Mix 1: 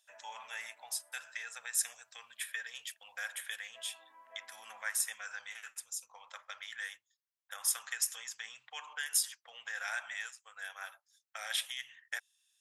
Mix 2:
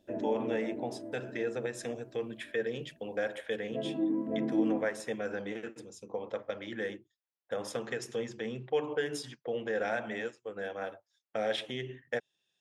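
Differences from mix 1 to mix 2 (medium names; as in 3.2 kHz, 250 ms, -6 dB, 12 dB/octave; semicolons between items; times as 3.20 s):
speech: add band-pass 390–3700 Hz; master: remove inverse Chebyshev high-pass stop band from 400 Hz, stop band 50 dB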